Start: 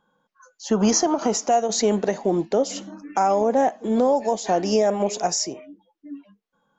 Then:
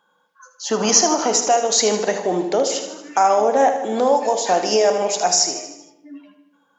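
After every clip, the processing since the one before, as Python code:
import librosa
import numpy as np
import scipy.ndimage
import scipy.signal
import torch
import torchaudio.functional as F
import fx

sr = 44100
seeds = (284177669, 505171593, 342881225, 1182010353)

y = fx.highpass(x, sr, hz=860.0, slope=6)
y = fx.echo_feedback(y, sr, ms=77, feedback_pct=55, wet_db=-10.0)
y = fx.room_shoebox(y, sr, seeds[0], volume_m3=340.0, walls='mixed', distance_m=0.36)
y = F.gain(torch.from_numpy(y), 7.5).numpy()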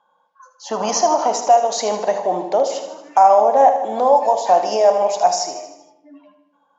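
y = scipy.signal.sosfilt(scipy.signal.butter(2, 6700.0, 'lowpass', fs=sr, output='sos'), x)
y = fx.band_shelf(y, sr, hz=780.0, db=11.0, octaves=1.2)
y = F.gain(torch.from_numpy(y), -6.0).numpy()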